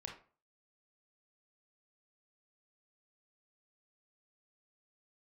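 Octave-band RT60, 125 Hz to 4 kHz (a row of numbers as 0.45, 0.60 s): 0.45, 0.40, 0.40, 0.40, 0.35, 0.25 s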